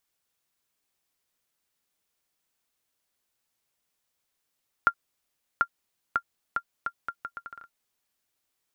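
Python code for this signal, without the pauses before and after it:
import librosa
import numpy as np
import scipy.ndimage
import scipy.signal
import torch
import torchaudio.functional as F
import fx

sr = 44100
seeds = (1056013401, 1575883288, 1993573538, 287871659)

y = fx.bouncing_ball(sr, first_gap_s=0.74, ratio=0.74, hz=1390.0, decay_ms=69.0, level_db=-8.5)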